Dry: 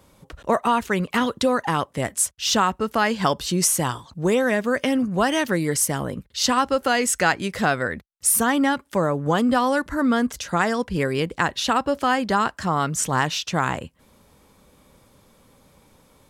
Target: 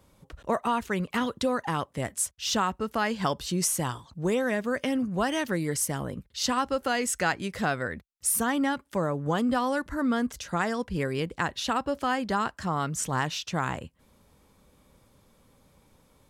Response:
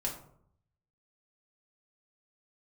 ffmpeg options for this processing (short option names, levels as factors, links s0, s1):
-af "lowshelf=f=140:g=4.5,volume=0.447"